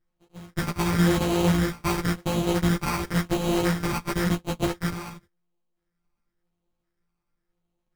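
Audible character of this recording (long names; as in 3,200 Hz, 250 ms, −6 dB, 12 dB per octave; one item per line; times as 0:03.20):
a buzz of ramps at a fixed pitch in blocks of 256 samples
phaser sweep stages 8, 0.94 Hz, lowest notch 560–1,600 Hz
aliases and images of a low sample rate 3,500 Hz, jitter 0%
a shimmering, thickened sound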